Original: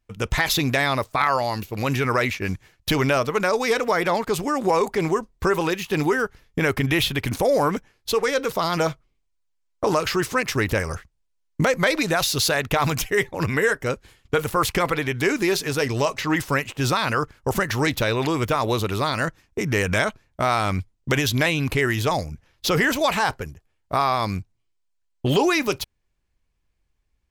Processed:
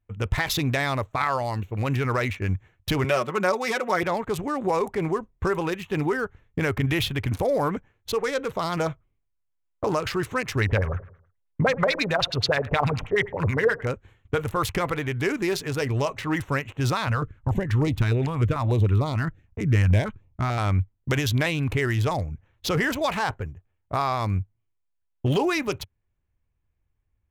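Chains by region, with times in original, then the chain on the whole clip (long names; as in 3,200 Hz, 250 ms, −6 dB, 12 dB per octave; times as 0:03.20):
0:03.04–0:04.03: high-pass filter 180 Hz + comb filter 5.4 ms, depth 71%
0:10.61–0:13.87: repeating echo 82 ms, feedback 47%, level −18 dB + auto-filter low-pass sine 9.4 Hz 490–4,500 Hz + notch filter 320 Hz, Q 6.5
0:17.07–0:20.58: one scale factor per block 7 bits + spectral tilt −1.5 dB per octave + notch on a step sequencer 6.7 Hz 350–1,600 Hz
whole clip: adaptive Wiener filter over 9 samples; parametric band 95 Hz +9.5 dB 0.84 octaves; level −4 dB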